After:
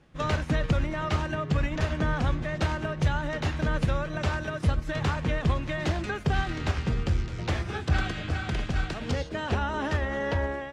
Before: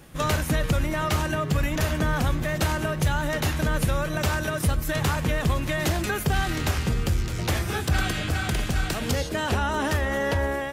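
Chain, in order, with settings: distance through air 120 m; upward expansion 1.5:1, over -38 dBFS

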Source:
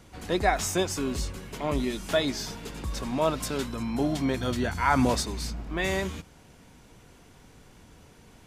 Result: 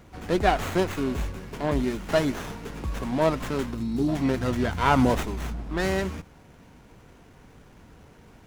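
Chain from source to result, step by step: time-frequency box 3.75–4.08 s, 420–3500 Hz -13 dB; sliding maximum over 9 samples; trim +2.5 dB

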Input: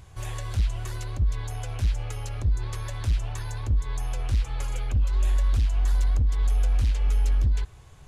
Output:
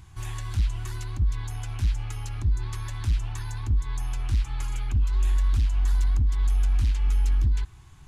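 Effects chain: FFT filter 350 Hz 0 dB, 510 Hz -18 dB, 860 Hz -1 dB

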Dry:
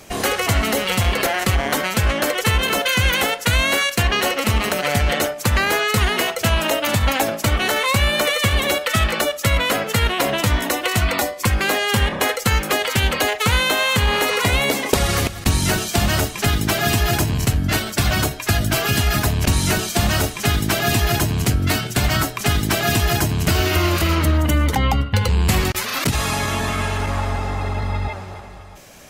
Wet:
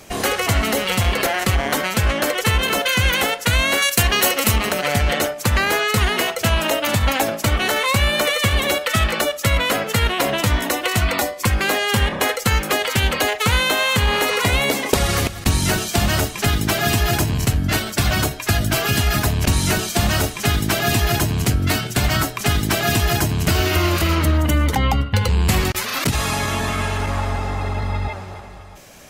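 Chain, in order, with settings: 3.82–4.56 s: treble shelf 6.2 kHz +12 dB

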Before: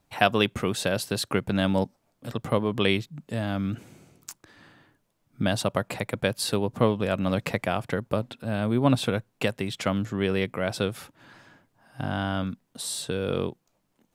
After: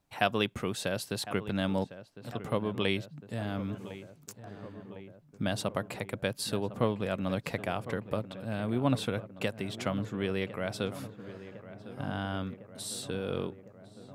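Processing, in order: filtered feedback delay 1055 ms, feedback 75%, low-pass 1.8 kHz, level -14 dB; trim -6.5 dB

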